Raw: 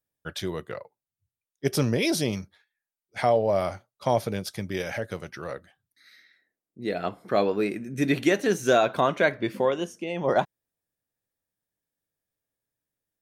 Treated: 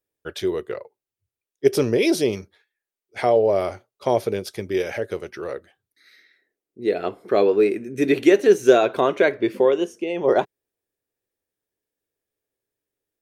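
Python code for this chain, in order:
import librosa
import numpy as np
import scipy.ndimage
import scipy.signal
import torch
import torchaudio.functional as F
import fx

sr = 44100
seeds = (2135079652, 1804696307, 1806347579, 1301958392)

y = fx.graphic_eq_15(x, sr, hz=(160, 400, 2500), db=(-6, 12, 3))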